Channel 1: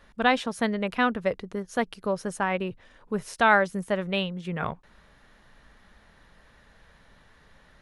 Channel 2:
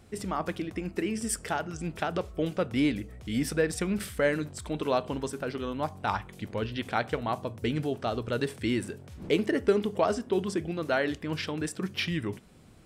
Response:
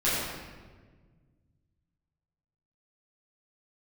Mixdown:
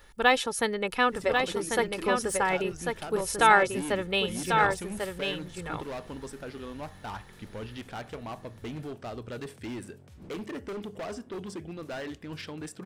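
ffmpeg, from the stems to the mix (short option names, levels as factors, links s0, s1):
-filter_complex "[0:a]deesser=0.55,aemphasis=mode=production:type=50kf,aecho=1:1:2.3:0.53,volume=0.841,asplit=2[s0][s1];[s1]volume=0.562[s2];[1:a]asoftclip=type=hard:threshold=0.0422,adelay=1000,volume=0.501[s3];[s2]aecho=0:1:1094:1[s4];[s0][s3][s4]amix=inputs=3:normalize=0"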